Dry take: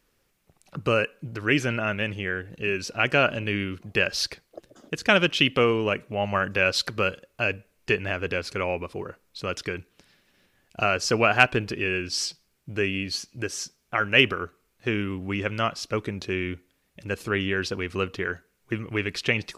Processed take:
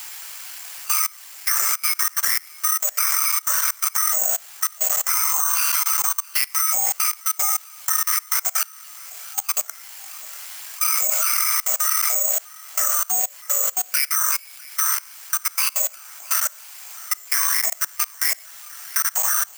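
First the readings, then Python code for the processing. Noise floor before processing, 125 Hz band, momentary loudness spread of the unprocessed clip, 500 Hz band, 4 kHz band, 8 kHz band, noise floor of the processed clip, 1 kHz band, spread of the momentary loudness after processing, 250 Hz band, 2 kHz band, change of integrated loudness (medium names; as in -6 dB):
-70 dBFS, under -40 dB, 14 LU, -15.0 dB, 0.0 dB, +20.0 dB, -44 dBFS, +1.5 dB, 16 LU, under -30 dB, -4.5 dB, +6.5 dB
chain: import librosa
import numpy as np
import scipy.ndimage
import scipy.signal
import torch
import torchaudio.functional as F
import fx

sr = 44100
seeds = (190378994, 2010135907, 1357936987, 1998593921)

p1 = fx.octave_mirror(x, sr, pivot_hz=1800.0)
p2 = 10.0 ** (-21.0 / 20.0) * np.tanh(p1 / 10.0 ** (-21.0 / 20.0))
p3 = p1 + F.gain(torch.from_numpy(p2), -11.0).numpy()
p4 = scipy.signal.sosfilt(scipy.signal.butter(2, 2400.0, 'lowpass', fs=sr, output='sos'), p3)
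p5 = fx.quant_dither(p4, sr, seeds[0], bits=6, dither='triangular')
p6 = fx.lpc_vocoder(p5, sr, seeds[1], excitation='pitch_kept', order=10)
p7 = p6 + fx.echo_single(p6, sr, ms=650, db=-9.0, dry=0)
p8 = fx.rev_gated(p7, sr, seeds[2], gate_ms=140, shape='flat', drr_db=4.5)
p9 = (np.kron(scipy.signal.resample_poly(p8, 1, 6), np.eye(6)[0]) * 6)[:len(p8)]
p10 = fx.level_steps(p9, sr, step_db=24)
p11 = scipy.signal.sosfilt(scipy.signal.butter(2, 1000.0, 'highpass', fs=sr, output='sos'), p10)
p12 = fx.band_squash(p11, sr, depth_pct=40)
y = F.gain(torch.from_numpy(p12), 4.5).numpy()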